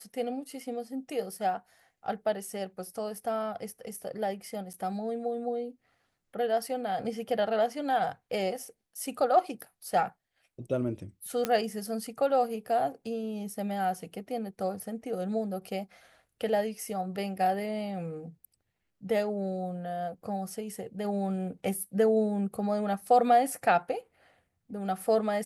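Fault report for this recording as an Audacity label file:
4.730000	4.740000	dropout 8 ms
11.450000	11.450000	pop -13 dBFS

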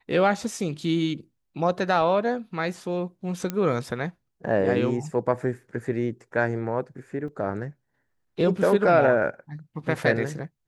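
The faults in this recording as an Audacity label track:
3.500000	3.500000	pop -14 dBFS
7.280000	7.280000	dropout 2.9 ms

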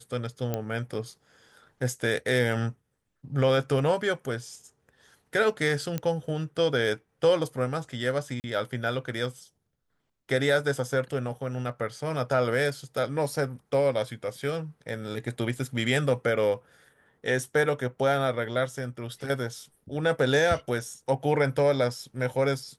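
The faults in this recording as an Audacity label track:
0.540000	0.540000	pop -15 dBFS
5.980000	5.980000	pop -16 dBFS
8.400000	8.440000	dropout 39 ms

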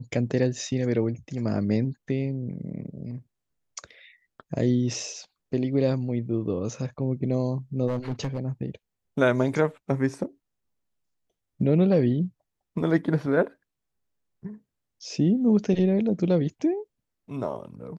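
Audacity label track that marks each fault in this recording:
7.880000	8.400000	clipped -23.5 dBFS

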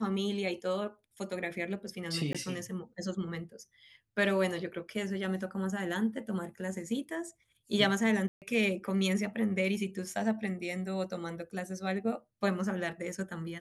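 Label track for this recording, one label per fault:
2.330000	2.350000	dropout 16 ms
8.280000	8.420000	dropout 138 ms

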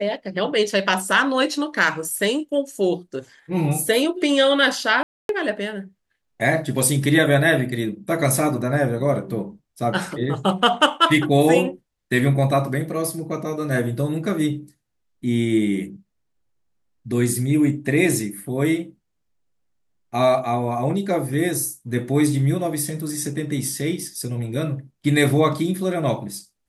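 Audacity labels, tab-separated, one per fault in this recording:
5.030000	5.290000	dropout 262 ms

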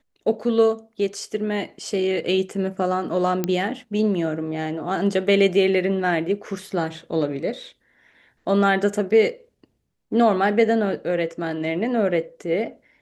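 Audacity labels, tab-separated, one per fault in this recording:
3.440000	3.440000	pop -9 dBFS

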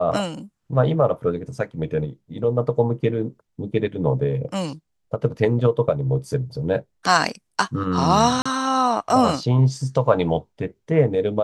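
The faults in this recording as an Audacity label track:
8.420000	8.460000	dropout 35 ms

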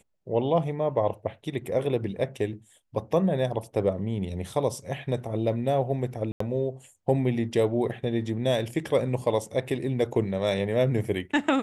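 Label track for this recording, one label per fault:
6.320000	6.400000	dropout 84 ms

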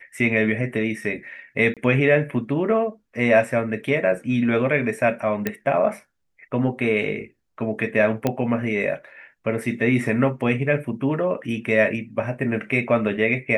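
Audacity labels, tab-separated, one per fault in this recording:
1.740000	1.770000	dropout 27 ms
5.470000	5.470000	pop -9 dBFS
8.270000	8.270000	pop -8 dBFS

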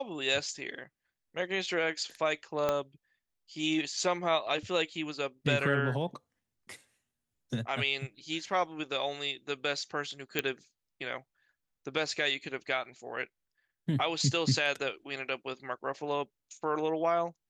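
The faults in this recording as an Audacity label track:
2.690000	2.690000	pop -15 dBFS
10.390000	10.390000	pop -13 dBFS

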